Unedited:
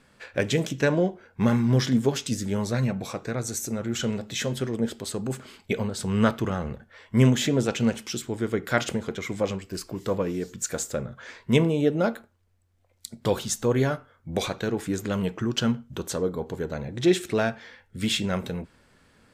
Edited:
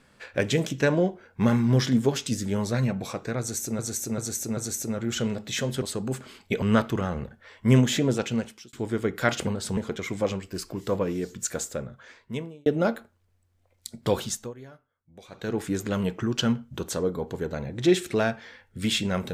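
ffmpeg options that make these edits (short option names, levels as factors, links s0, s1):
-filter_complex "[0:a]asplit=12[s0][s1][s2][s3][s4][s5][s6][s7][s8][s9][s10][s11];[s0]atrim=end=3.792[s12];[s1]atrim=start=3.398:end=3.792[s13];[s2]atrim=start=3.398:end=3.792[s14];[s3]atrim=start=3.398:end=4.652[s15];[s4]atrim=start=5.008:end=5.812[s16];[s5]atrim=start=6.108:end=8.22,asetpts=PTS-STARTPTS,afade=t=out:st=1.272:d=0.84:c=qsin[s17];[s6]atrim=start=8.22:end=8.962,asetpts=PTS-STARTPTS,afade=t=in:d=0.004:c=hsin[s18];[s7]atrim=start=5.808:end=6.112[s19];[s8]atrim=start=8.958:end=11.85,asetpts=PTS-STARTPTS,afade=t=out:st=1.652:d=1.24[s20];[s9]atrim=start=11.85:end=13.72,asetpts=PTS-STARTPTS,afade=t=in:d=0.004:c=hsin,afade=t=out:st=1.58:d=0.29:silence=0.0794328[s21];[s10]atrim=start=13.72:end=14.47,asetpts=PTS-STARTPTS,volume=0.0794[s22];[s11]atrim=start=14.47,asetpts=PTS-STARTPTS,afade=t=in:d=0.29:silence=0.0794328[s23];[s12][s13]acrossfade=d=0.004:c1=hsin:c2=hsin[s24];[s24][s14]acrossfade=d=0.004:c1=hsin:c2=hsin[s25];[s25][s15]acrossfade=d=0.004:c1=hsin:c2=hsin[s26];[s26][s16]acrossfade=d=0.004:c1=hsin:c2=hsin[s27];[s17][s18]concat=n=2:v=0:a=1[s28];[s27][s28]acrossfade=d=0.004:c1=hsin:c2=hsin[s29];[s29][s19]acrossfade=d=0.004:c1=hsin:c2=hsin[s30];[s20][s21][s22][s23]concat=n=4:v=0:a=1[s31];[s30][s31]acrossfade=d=0.004:c1=hsin:c2=hsin"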